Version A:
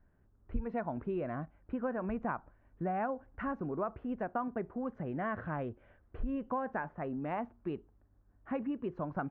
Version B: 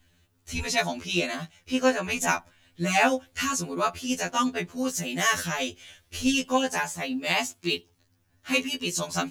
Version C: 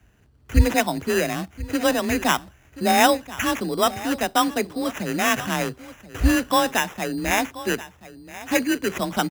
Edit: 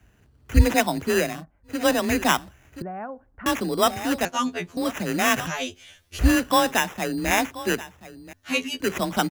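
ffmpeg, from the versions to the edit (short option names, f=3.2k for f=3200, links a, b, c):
-filter_complex "[0:a]asplit=2[a][b];[1:a]asplit=3[c][d][e];[2:a]asplit=6[f][g][h][i][j][k];[f]atrim=end=1.45[l];[a]atrim=start=1.21:end=1.87[m];[g]atrim=start=1.63:end=2.822[n];[b]atrim=start=2.818:end=3.462[o];[h]atrim=start=3.458:end=4.252[p];[c]atrim=start=4.248:end=4.772[q];[i]atrim=start=4.768:end=5.472[r];[d]atrim=start=5.468:end=6.192[s];[j]atrim=start=6.188:end=8.332[t];[e]atrim=start=8.328:end=8.802[u];[k]atrim=start=8.798[v];[l][m]acrossfade=d=0.24:c1=tri:c2=tri[w];[w][n]acrossfade=d=0.24:c1=tri:c2=tri[x];[x][o]acrossfade=d=0.004:c1=hsin:c2=hsin[y];[y][p]acrossfade=d=0.004:c1=hsin:c2=hsin[z];[z][q]acrossfade=d=0.004:c1=hsin:c2=hsin[aa];[aa][r]acrossfade=d=0.004:c1=hsin:c2=hsin[ab];[ab][s]acrossfade=d=0.004:c1=hsin:c2=hsin[ac];[ac][t]acrossfade=d=0.004:c1=hsin:c2=hsin[ad];[ad][u]acrossfade=d=0.004:c1=hsin:c2=hsin[ae];[ae][v]acrossfade=d=0.004:c1=hsin:c2=hsin"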